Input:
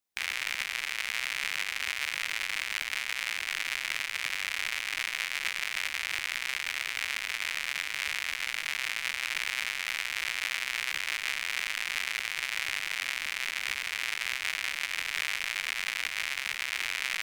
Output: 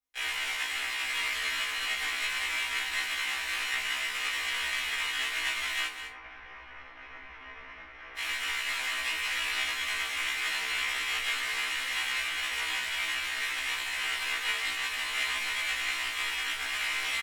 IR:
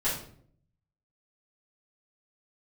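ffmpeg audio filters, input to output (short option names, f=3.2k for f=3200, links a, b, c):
-filter_complex "[0:a]asplit=3[a][b][c];[a]afade=t=out:st=5.85:d=0.02[d];[b]lowpass=1.1k,afade=t=in:st=5.85:d=0.02,afade=t=out:st=8.16:d=0.02[e];[c]afade=t=in:st=8.16:d=0.02[f];[d][e][f]amix=inputs=3:normalize=0,aeval=exprs='0.251*(cos(1*acos(clip(val(0)/0.251,-1,1)))-cos(1*PI/2))+0.0158*(cos(7*acos(clip(val(0)/0.251,-1,1)))-cos(7*PI/2))':c=same,aecho=1:1:205:0.316[g];[1:a]atrim=start_sample=2205,asetrate=83790,aresample=44100[h];[g][h]afir=irnorm=-1:irlink=0,afftfilt=real='re*1.73*eq(mod(b,3),0)':imag='im*1.73*eq(mod(b,3),0)':win_size=2048:overlap=0.75"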